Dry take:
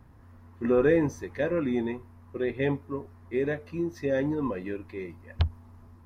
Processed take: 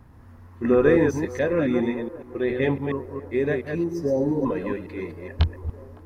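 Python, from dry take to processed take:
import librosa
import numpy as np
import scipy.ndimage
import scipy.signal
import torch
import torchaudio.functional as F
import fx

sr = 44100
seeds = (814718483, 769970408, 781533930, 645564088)

y = fx.reverse_delay(x, sr, ms=139, wet_db=-5.0)
y = fx.spec_repair(y, sr, seeds[0], start_s=3.95, length_s=0.48, low_hz=970.0, high_hz=4600.0, source='before')
y = fx.echo_wet_bandpass(y, sr, ms=560, feedback_pct=62, hz=670.0, wet_db=-17.5)
y = F.gain(torch.from_numpy(y), 4.0).numpy()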